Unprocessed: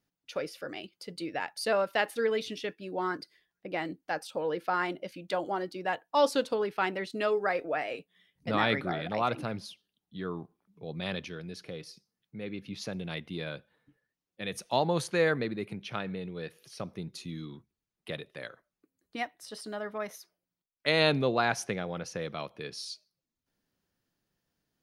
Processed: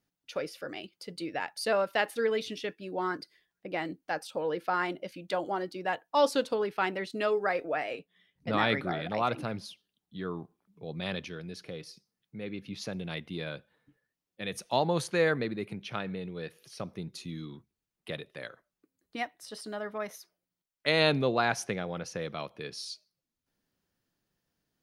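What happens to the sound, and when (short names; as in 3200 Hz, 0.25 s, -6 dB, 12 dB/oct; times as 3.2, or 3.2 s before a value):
7.95–8.53 high shelf 6300 Hz -8.5 dB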